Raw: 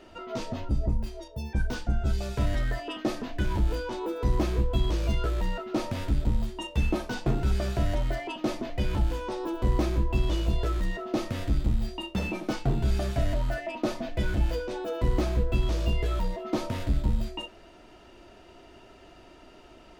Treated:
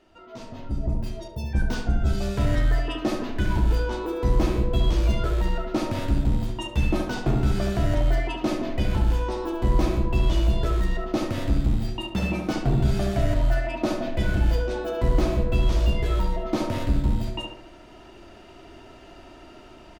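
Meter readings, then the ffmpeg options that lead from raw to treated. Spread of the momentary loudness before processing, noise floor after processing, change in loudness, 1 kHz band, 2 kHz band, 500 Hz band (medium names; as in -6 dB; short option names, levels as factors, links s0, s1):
5 LU, -47 dBFS, +4.5 dB, +4.0 dB, +4.0 dB, +4.0 dB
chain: -filter_complex "[0:a]equalizer=f=480:t=o:w=0.36:g=-3,dynaudnorm=f=540:g=3:m=4.22,asplit=2[s0][s1];[s1]adelay=71,lowpass=f=1800:p=1,volume=0.668,asplit=2[s2][s3];[s3]adelay=71,lowpass=f=1800:p=1,volume=0.52,asplit=2[s4][s5];[s5]adelay=71,lowpass=f=1800:p=1,volume=0.52,asplit=2[s6][s7];[s7]adelay=71,lowpass=f=1800:p=1,volume=0.52,asplit=2[s8][s9];[s9]adelay=71,lowpass=f=1800:p=1,volume=0.52,asplit=2[s10][s11];[s11]adelay=71,lowpass=f=1800:p=1,volume=0.52,asplit=2[s12][s13];[s13]adelay=71,lowpass=f=1800:p=1,volume=0.52[s14];[s0][s2][s4][s6][s8][s10][s12][s14]amix=inputs=8:normalize=0,volume=0.376"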